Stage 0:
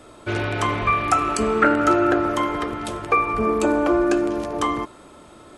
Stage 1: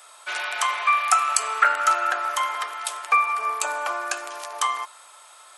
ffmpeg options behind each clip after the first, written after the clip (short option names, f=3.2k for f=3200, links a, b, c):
-af "highpass=f=810:w=0.5412,highpass=f=810:w=1.3066,highshelf=f=5.5k:g=11.5"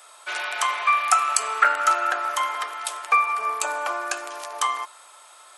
-af "lowshelf=f=380:g=5.5,aeval=exprs='0.841*(cos(1*acos(clip(val(0)/0.841,-1,1)))-cos(1*PI/2))+0.00841*(cos(7*acos(clip(val(0)/0.841,-1,1)))-cos(7*PI/2))':c=same"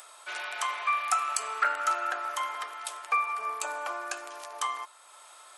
-af "acompressor=mode=upward:threshold=-37dB:ratio=2.5,asoftclip=type=tanh:threshold=-4.5dB,volume=-7.5dB"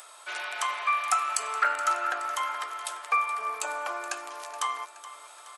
-af "aecho=1:1:423|846|1269|1692|2115:0.178|0.0978|0.0538|0.0296|0.0163,volume=1.5dB"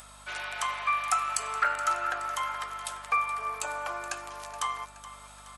-af "aeval=exprs='val(0)+0.002*(sin(2*PI*50*n/s)+sin(2*PI*2*50*n/s)/2+sin(2*PI*3*50*n/s)/3+sin(2*PI*4*50*n/s)/4+sin(2*PI*5*50*n/s)/5)':c=same,volume=-1.5dB"